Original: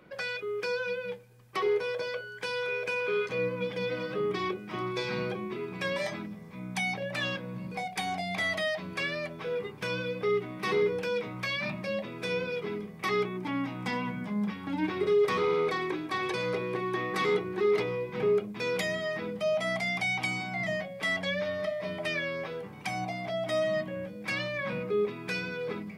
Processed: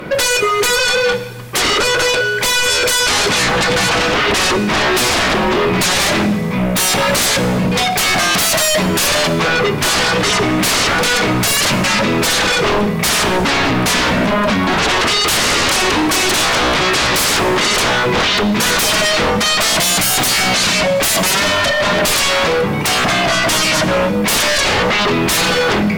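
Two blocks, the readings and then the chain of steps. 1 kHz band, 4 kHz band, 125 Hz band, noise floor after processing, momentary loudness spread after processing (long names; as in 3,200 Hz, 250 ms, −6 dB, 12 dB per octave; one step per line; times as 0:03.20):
+20.0 dB, +25.5 dB, +18.0 dB, −17 dBFS, 2 LU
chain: sine wavefolder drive 20 dB, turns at −16.5 dBFS
reverb whose tail is shaped and stops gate 430 ms falling, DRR 11.5 dB
level +5 dB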